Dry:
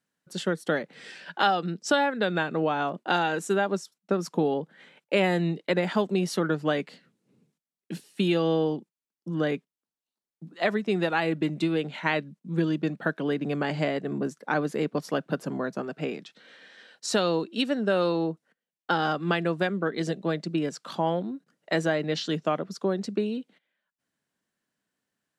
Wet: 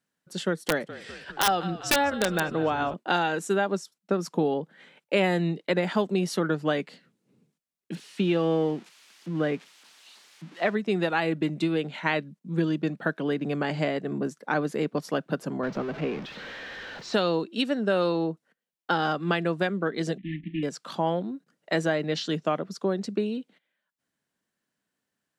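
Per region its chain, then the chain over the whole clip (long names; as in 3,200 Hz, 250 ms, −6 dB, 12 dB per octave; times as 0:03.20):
0:00.60–0:02.94: echo with shifted repeats 201 ms, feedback 63%, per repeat −43 Hz, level −15 dB + wrap-around overflow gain 13 dB
0:07.95–0:10.75: spike at every zero crossing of −28.5 dBFS + low-pass filter 2,900 Hz
0:15.63–0:17.14: converter with a step at zero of −32.5 dBFS + high-frequency loss of the air 210 metres
0:20.18–0:20.63: variable-slope delta modulation 16 kbit/s + linear-phase brick-wall band-stop 330–1,700 Hz + hum removal 56.8 Hz, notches 8
whole clip: no processing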